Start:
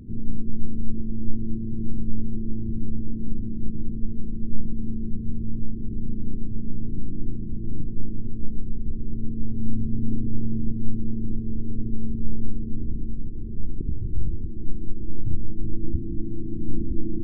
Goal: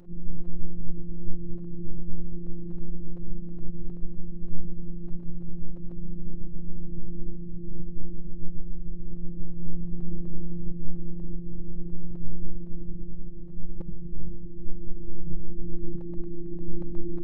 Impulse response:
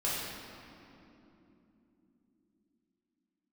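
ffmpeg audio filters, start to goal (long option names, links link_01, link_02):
-af "afftfilt=real='hypot(re,im)*cos(PI*b)':imag='0':win_size=1024:overlap=0.75,aeval=exprs='abs(val(0))':channel_layout=same,volume=-1.5dB"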